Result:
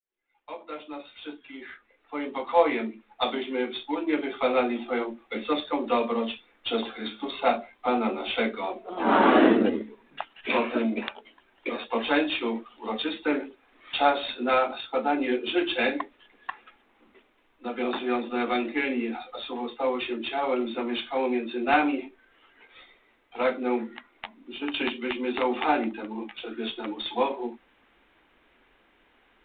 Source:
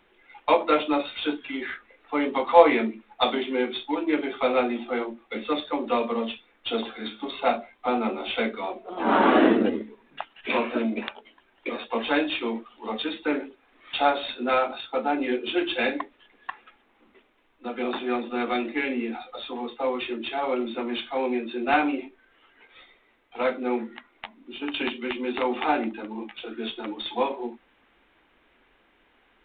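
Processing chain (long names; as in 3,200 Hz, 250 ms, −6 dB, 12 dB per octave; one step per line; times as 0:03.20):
fade in at the beginning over 5.05 s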